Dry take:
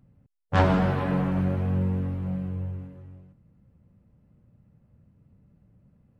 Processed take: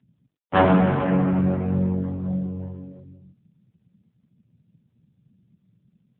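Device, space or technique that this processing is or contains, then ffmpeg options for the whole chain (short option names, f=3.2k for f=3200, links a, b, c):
mobile call with aggressive noise cancelling: -filter_complex "[0:a]bandreject=f=50:t=h:w=6,bandreject=f=100:t=h:w=6,bandreject=f=150:t=h:w=6,bandreject=f=200:t=h:w=6,asettb=1/sr,asplit=3[a][b][c];[a]atrim=end=2.594[d];[b]atrim=start=2.59:end=3,asetpts=PTS-STARTPTS,afade=t=in:d=0.004:c=qsin,afade=t=out:st=0.406:d=0.004:c=qsin,equalizer=f=1.7k:t=o:w=1.8:g=4.5[e];[c]atrim=start=2.996[f];[d][e]acrossfade=d=0.004:c1=hsin:c2=qsin[g];[g][f]acrossfade=d=0.004:c1=qsin:c2=hsin,highpass=130,afftdn=nr=14:nf=-50,volume=6.5dB" -ar 8000 -c:a libopencore_amrnb -b:a 7950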